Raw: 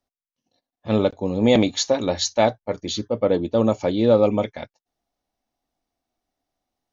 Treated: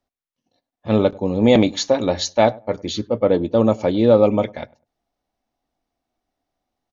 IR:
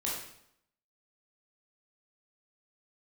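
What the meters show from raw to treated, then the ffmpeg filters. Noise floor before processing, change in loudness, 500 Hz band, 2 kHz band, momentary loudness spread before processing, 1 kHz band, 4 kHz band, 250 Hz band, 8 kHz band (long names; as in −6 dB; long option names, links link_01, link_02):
below −85 dBFS, +2.5 dB, +3.0 dB, +2.0 dB, 10 LU, +3.0 dB, 0.0 dB, +3.0 dB, can't be measured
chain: -filter_complex "[0:a]highshelf=frequency=5100:gain=-8,asplit=2[link_01][link_02];[link_02]adelay=100,lowpass=frequency=1000:poles=1,volume=-22dB,asplit=2[link_03][link_04];[link_04]adelay=100,lowpass=frequency=1000:poles=1,volume=0.23[link_05];[link_03][link_05]amix=inputs=2:normalize=0[link_06];[link_01][link_06]amix=inputs=2:normalize=0,volume=3dB"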